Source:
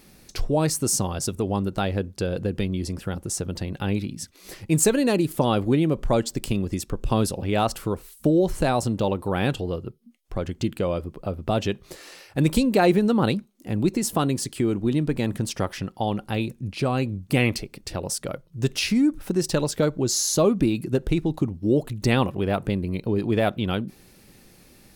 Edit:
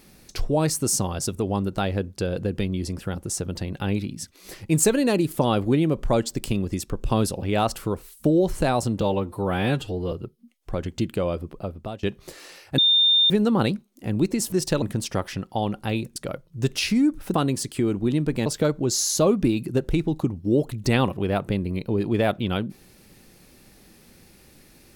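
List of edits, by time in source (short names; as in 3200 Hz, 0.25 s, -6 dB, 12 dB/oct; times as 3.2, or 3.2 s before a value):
9.01–9.75 stretch 1.5×
11.15–11.66 fade out linear, to -22 dB
12.41–12.93 bleep 3620 Hz -14.5 dBFS
14.15–15.27 swap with 19.34–19.64
16.61–18.16 cut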